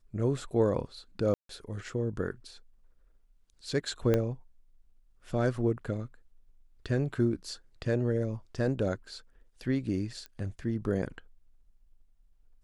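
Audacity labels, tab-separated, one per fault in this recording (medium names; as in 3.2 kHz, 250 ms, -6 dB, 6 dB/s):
1.340000	1.490000	dropout 153 ms
4.140000	4.140000	pop -14 dBFS
10.260000	10.260000	pop -28 dBFS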